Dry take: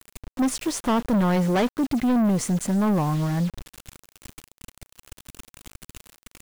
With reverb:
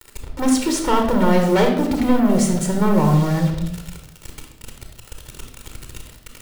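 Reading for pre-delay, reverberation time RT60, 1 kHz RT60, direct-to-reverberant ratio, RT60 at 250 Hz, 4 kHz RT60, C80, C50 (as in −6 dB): 23 ms, 0.80 s, 0.70 s, 3.0 dB, 0.90 s, 0.60 s, 9.0 dB, 6.0 dB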